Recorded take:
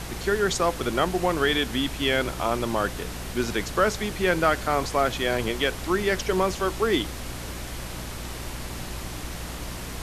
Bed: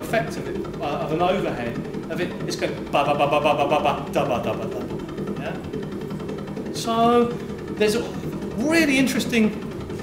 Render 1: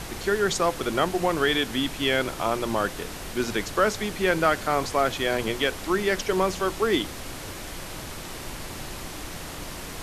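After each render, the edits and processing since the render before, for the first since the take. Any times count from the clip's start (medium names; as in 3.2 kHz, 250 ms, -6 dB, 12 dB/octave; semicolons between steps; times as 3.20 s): de-hum 60 Hz, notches 4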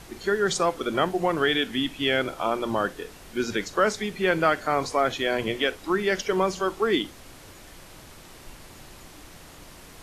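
noise print and reduce 10 dB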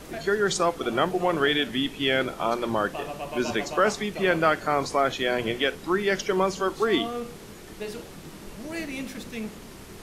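add bed -15.5 dB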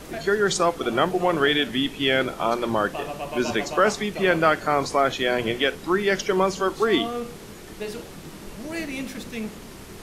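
trim +2.5 dB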